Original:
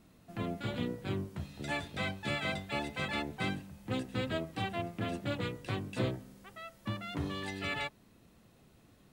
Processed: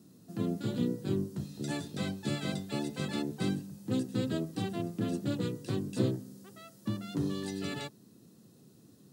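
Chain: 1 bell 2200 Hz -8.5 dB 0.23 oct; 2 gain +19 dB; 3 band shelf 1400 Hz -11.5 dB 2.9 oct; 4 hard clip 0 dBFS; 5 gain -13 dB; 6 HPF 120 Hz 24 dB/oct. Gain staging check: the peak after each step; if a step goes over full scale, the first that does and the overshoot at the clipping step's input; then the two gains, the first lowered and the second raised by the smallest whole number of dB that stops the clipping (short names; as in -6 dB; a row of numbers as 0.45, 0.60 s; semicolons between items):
-21.5, -2.5, -3.0, -3.0, -16.0, -16.0 dBFS; no overload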